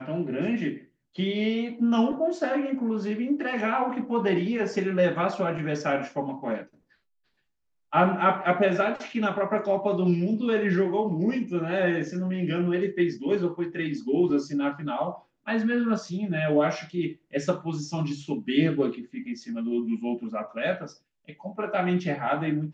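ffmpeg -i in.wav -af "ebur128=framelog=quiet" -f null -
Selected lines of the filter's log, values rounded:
Integrated loudness:
  I:         -26.8 LUFS
  Threshold: -37.0 LUFS
Loudness range:
  LRA:         4.0 LU
  Threshold: -47.0 LUFS
  LRA low:   -29.1 LUFS
  LRA high:  -25.1 LUFS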